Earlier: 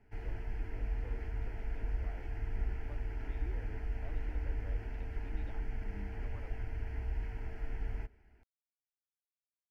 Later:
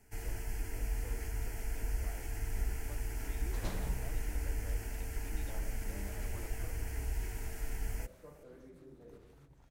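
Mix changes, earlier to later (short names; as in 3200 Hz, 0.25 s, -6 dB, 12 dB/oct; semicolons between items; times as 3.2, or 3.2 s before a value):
second sound: unmuted; master: remove air absorption 340 m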